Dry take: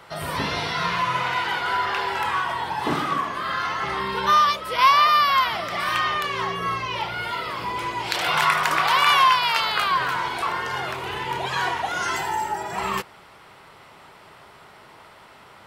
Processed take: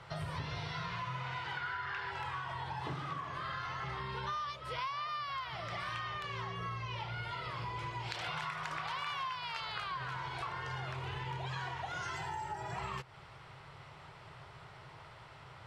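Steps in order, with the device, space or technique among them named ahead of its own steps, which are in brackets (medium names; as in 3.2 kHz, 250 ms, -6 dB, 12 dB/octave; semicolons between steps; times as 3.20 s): 1.57–2.11 s: fifteen-band graphic EQ 630 Hz -6 dB, 1.6 kHz +9 dB, 10 kHz -6 dB; jukebox (low-pass 6.7 kHz 12 dB/octave; resonant low shelf 170 Hz +7.5 dB, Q 3; compression 6:1, threshold -31 dBFS, peak gain reduction 18 dB); trim -6.5 dB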